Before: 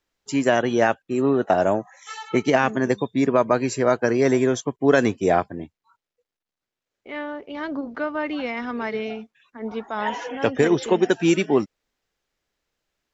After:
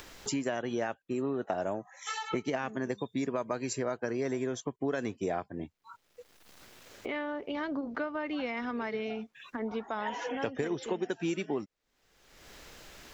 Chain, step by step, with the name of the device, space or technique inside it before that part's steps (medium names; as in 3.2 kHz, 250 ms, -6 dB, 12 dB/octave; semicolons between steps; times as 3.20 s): 2.95–3.73 s: treble shelf 5.5 kHz +11 dB; upward and downward compression (upward compressor, threshold -33 dBFS; compression 4:1, threshold -36 dBFS, peak gain reduction 20 dB); trim +3 dB